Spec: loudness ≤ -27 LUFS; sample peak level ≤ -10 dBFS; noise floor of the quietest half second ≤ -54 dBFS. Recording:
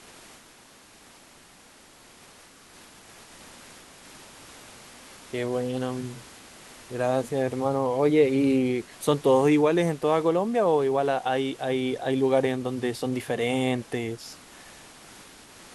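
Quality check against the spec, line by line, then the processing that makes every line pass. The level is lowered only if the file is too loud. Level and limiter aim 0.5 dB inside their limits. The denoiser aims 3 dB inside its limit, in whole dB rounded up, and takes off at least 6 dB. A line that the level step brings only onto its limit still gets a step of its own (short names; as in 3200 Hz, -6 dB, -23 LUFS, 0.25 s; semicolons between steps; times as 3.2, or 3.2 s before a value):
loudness -25.0 LUFS: fail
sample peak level -8.0 dBFS: fail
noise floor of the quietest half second -53 dBFS: fail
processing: gain -2.5 dB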